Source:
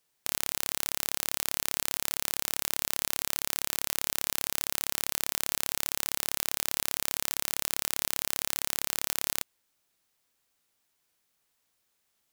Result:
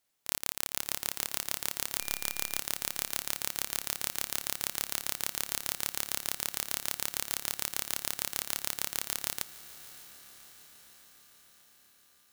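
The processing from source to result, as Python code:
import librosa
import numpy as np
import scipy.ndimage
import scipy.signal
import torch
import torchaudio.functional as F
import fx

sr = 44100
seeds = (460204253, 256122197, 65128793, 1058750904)

p1 = fx.dmg_tone(x, sr, hz=1200.0, level_db=-41.0, at=(1.99, 2.58), fade=0.02)
p2 = p1 + fx.echo_diffused(p1, sr, ms=635, feedback_pct=62, wet_db=-15.5, dry=0)
y = p2 * np.sin(2.0 * np.pi * 1200.0 * np.arange(len(p2)) / sr)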